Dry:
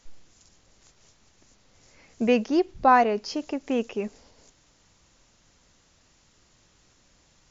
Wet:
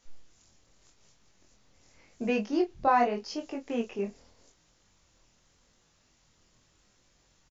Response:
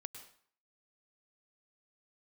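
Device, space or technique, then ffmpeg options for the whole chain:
double-tracked vocal: -filter_complex "[0:a]asplit=2[a][b];[b]adelay=25,volume=-8dB[c];[a][c]amix=inputs=2:normalize=0,flanger=delay=19:depth=6.4:speed=0.85,volume=-3dB"

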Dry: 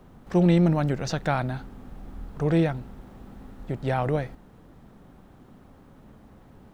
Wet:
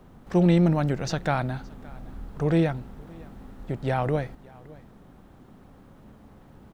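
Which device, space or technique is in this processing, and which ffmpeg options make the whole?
ducked delay: -filter_complex "[0:a]asplit=3[a][b][c];[b]adelay=569,volume=-9dB[d];[c]apad=whole_len=322095[e];[d][e]sidechaincompress=threshold=-40dB:ratio=8:attack=16:release=1190[f];[a][f]amix=inputs=2:normalize=0"

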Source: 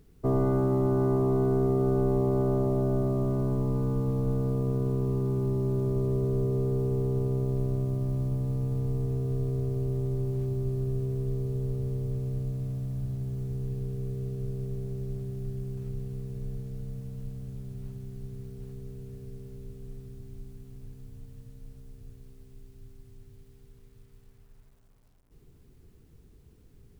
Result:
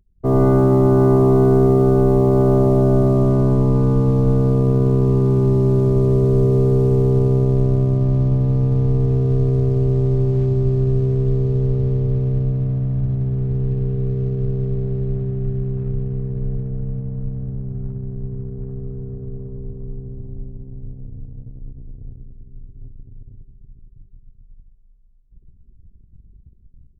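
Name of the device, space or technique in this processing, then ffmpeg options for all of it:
voice memo with heavy noise removal: -af "anlmdn=0.0251,dynaudnorm=f=110:g=5:m=12.5dB"

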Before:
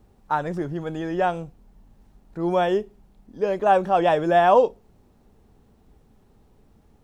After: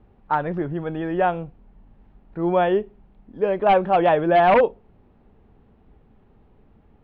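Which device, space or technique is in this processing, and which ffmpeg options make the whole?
synthesiser wavefolder: -af "aeval=exprs='0.266*(abs(mod(val(0)/0.266+3,4)-2)-1)':c=same,lowpass=f=3k:w=0.5412,lowpass=f=3k:w=1.3066,volume=2dB"

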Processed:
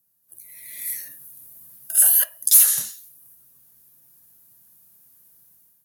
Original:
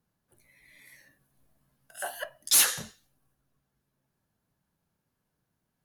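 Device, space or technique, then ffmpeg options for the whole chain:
FM broadcast chain: -filter_complex "[0:a]highpass=60,dynaudnorm=f=200:g=5:m=14.5dB,acrossover=split=870|2600[a][b][c];[a]acompressor=threshold=-43dB:ratio=4[d];[b]acompressor=threshold=-29dB:ratio=4[e];[c]acompressor=threshold=-23dB:ratio=4[f];[d][e][f]amix=inputs=3:normalize=0,aemphasis=mode=production:type=50fm,alimiter=limit=-7dB:level=0:latency=1:release=93,asoftclip=type=hard:threshold=-10dB,lowpass=f=15k:w=0.5412,lowpass=f=15k:w=1.3066,aemphasis=mode=production:type=50fm,asettb=1/sr,asplit=3[g][h][i];[g]atrim=end=2.374[j];[h]atrim=start=2.37:end=2.81,asetpts=PTS-STARTPTS,afade=t=in:d=0.004:c=qsin,afade=t=out:st=0.436:d=0.004:c=qsin,bass=f=250:g=6,treble=f=4k:g=0[k];[i]atrim=start=2.806[l];[j][k]acrossfade=d=0.004:c1=hsin:c2=qsin[m];[m][l]acrossfade=d=0.004:c1=qsin:c2=hsin,volume=-7dB"

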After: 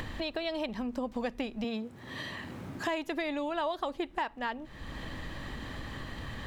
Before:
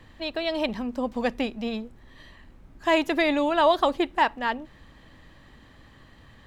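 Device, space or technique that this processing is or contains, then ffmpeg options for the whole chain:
upward and downward compression: -filter_complex "[0:a]asettb=1/sr,asplit=3[a][b][c];[a]atrim=end=1.644[d];[b]atrim=start=1.64:end=2.88,asetpts=PTS-STARTPTS,afade=t=in:d=0.004:c=qsin,afade=t=out:st=1.236:d=0.004:c=qsin,highpass=f=97:w=0.5412,highpass=f=97:w=1.3066[e];[c]atrim=start=2.876[f];[d][e]acrossfade=d=0.004:c1=hsin:c2=qsin[g];[g][f]acrossfade=d=0.004:c1=qsin:c2=hsin,acompressor=mode=upward:threshold=-28dB:ratio=2.5,acompressor=threshold=-31dB:ratio=5"

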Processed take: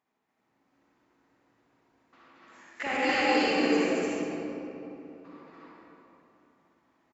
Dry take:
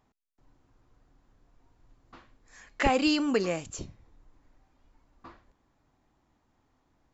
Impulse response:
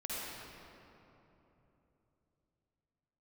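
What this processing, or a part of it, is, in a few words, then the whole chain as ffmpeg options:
stadium PA: -filter_complex "[0:a]highpass=210,equalizer=f=2.1k:t=o:w=1:g=6,aecho=1:1:224.5|288.6:0.891|1[a];[1:a]atrim=start_sample=2205[b];[a][b]afir=irnorm=-1:irlink=0,volume=-6dB"

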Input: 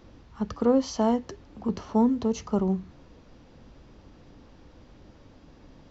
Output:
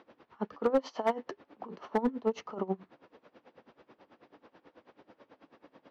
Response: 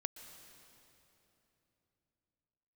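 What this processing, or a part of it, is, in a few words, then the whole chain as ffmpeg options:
helicopter radio: -filter_complex "[0:a]asettb=1/sr,asplit=3[a][b][c];[a]atrim=end=0.704[d];[b]atrim=start=0.7:end=1.22,asetpts=PTS-STARTPTS,afade=t=in:d=0.004:c=qsin,afade=t=out:st=0.516:d=0.004:c=qsin,highpass=f=210:p=1[e];[c]atrim=start=1.216[f];[d][e]acrossfade=d=0.004:c1=hsin:c2=qsin[g];[g][f]acrossfade=d=0.004:c1=qsin:c2=hsin,highpass=390,lowpass=2.6k,aeval=exprs='val(0)*pow(10,-21*(0.5-0.5*cos(2*PI*9.2*n/s))/20)':c=same,asoftclip=type=hard:threshold=-24.5dB,volume=5dB"

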